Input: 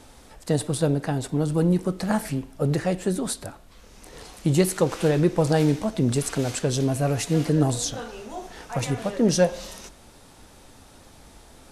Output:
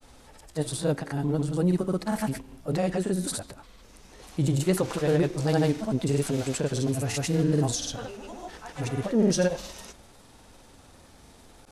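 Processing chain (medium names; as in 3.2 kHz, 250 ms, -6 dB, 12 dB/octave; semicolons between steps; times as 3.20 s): granulator, pitch spread up and down by 0 st; transient shaper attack -3 dB, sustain +1 dB; trim -1.5 dB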